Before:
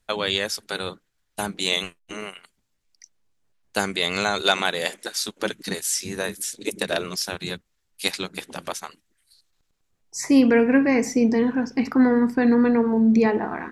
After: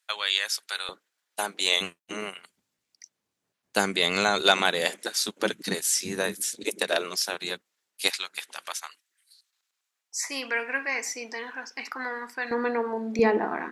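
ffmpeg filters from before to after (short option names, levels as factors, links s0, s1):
-af "asetnsamples=n=441:p=0,asendcmd='0.89 highpass f 490;1.81 highpass f 150;6.64 highpass f 380;8.1 highpass f 1200;12.51 highpass f 570;13.19 highpass f 260',highpass=1300"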